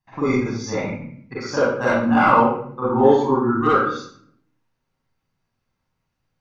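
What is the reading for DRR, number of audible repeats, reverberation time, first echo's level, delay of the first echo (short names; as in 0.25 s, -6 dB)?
-8.5 dB, none, 0.60 s, none, none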